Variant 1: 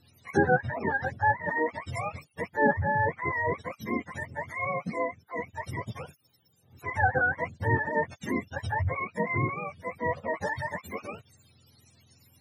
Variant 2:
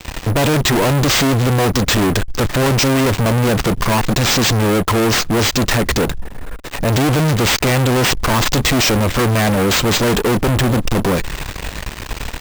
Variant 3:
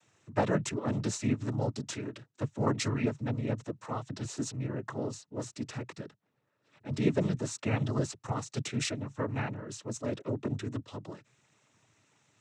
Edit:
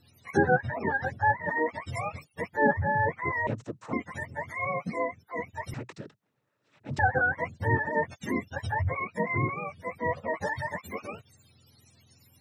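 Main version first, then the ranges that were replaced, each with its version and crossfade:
1
0:03.47–0:03.93: punch in from 3
0:05.74–0:06.99: punch in from 3
not used: 2

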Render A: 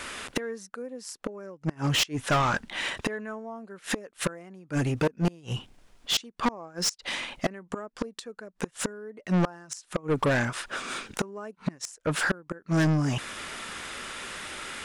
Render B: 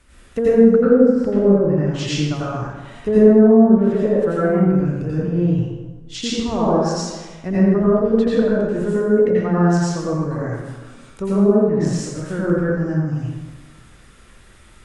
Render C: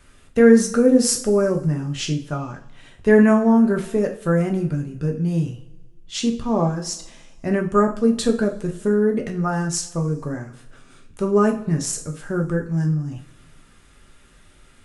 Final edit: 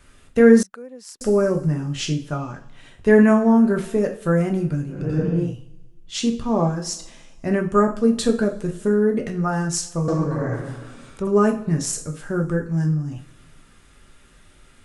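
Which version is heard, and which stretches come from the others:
C
0:00.63–0:01.21: punch in from A
0:04.98–0:05.44: punch in from B, crossfade 0.24 s
0:10.08–0:11.27: punch in from B

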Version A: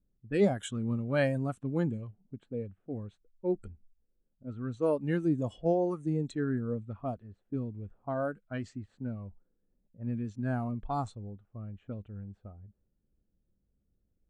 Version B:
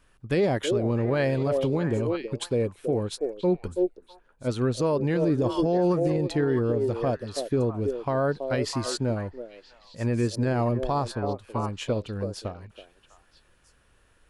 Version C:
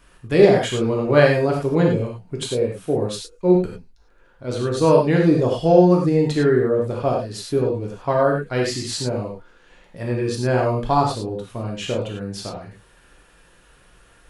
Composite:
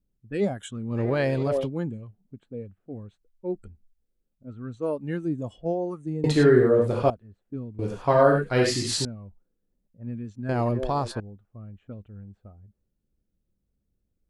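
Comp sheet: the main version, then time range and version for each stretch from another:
A
0:00.95–0:01.65: punch in from B, crossfade 0.10 s
0:06.24–0:07.10: punch in from C
0:07.79–0:09.05: punch in from C
0:10.49–0:11.20: punch in from B

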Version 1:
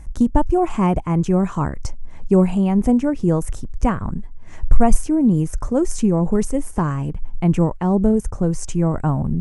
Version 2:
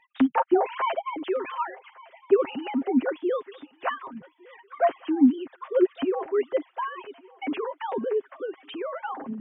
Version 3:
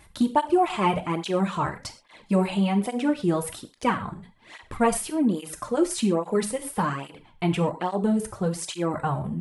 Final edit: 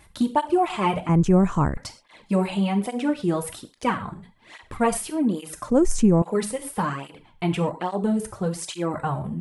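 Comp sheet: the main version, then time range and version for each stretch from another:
3
0:01.09–0:01.77: punch in from 1
0:05.70–0:06.22: punch in from 1
not used: 2

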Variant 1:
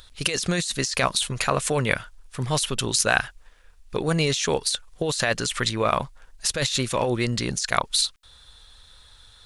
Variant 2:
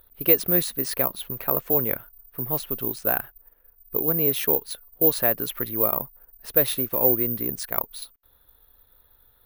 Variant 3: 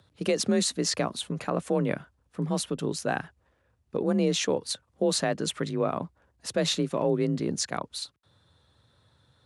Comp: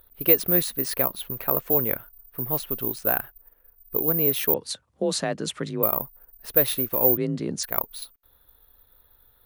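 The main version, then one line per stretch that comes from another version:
2
0:04.54–0:05.83: punch in from 3
0:07.17–0:07.63: punch in from 3
not used: 1

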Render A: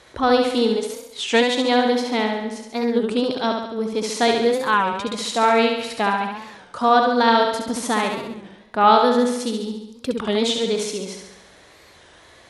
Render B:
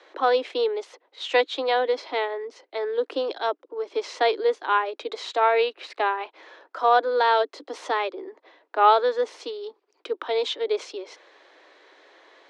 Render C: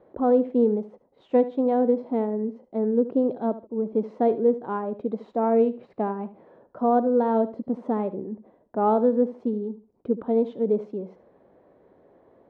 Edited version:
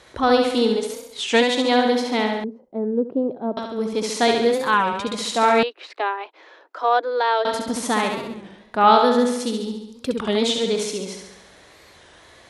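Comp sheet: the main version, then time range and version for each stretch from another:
A
0:02.44–0:03.57: punch in from C
0:05.63–0:07.45: punch in from B

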